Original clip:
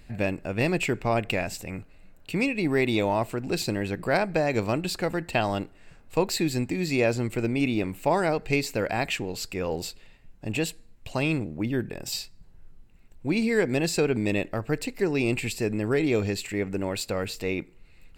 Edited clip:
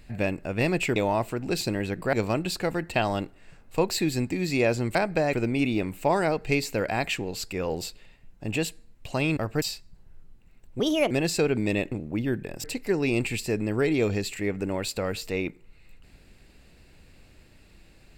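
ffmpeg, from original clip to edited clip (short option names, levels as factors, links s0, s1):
-filter_complex "[0:a]asplit=11[s0][s1][s2][s3][s4][s5][s6][s7][s8][s9][s10];[s0]atrim=end=0.962[s11];[s1]atrim=start=2.968:end=4.142[s12];[s2]atrim=start=4.518:end=7.342[s13];[s3]atrim=start=4.138:end=4.522[s14];[s4]atrim=start=7.338:end=11.382[s15];[s5]atrim=start=14.508:end=14.762[s16];[s6]atrim=start=12.098:end=13.284[s17];[s7]atrim=start=13.28:end=13.7,asetpts=PTS-STARTPTS,asetrate=60417,aresample=44100[s18];[s8]atrim=start=13.696:end=14.512[s19];[s9]atrim=start=11.378:end=12.102[s20];[s10]atrim=start=14.758[s21];[s11][s12]acrossfade=d=0.004:c1=hsin:c2=hsin[s22];[s22][s13]acrossfade=d=0.004:c1=hsin:c2=hsin[s23];[s23][s14]acrossfade=d=0.004:c1=hsin:c2=hsin[s24];[s24][s15]acrossfade=d=0.004:c1=hsin:c2=hsin[s25];[s25][s16]acrossfade=d=0.004:c1=hsin:c2=hsin[s26];[s26][s17]acrossfade=d=0.004:c1=hsin:c2=hsin[s27];[s27][s18]acrossfade=d=0.004:c1=hsin:c2=hsin[s28];[s28][s19]acrossfade=d=0.004:c1=hsin:c2=hsin[s29];[s29][s20]acrossfade=d=0.004:c1=hsin:c2=hsin[s30];[s30][s21]acrossfade=d=0.004:c1=hsin:c2=hsin"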